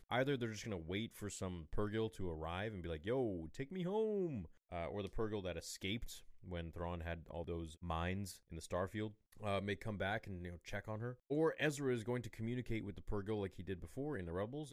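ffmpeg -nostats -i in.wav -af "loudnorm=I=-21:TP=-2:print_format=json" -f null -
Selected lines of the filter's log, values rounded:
"input_i" : "-43.1",
"input_tp" : "-23.5",
"input_lra" : "3.7",
"input_thresh" : "-53.1",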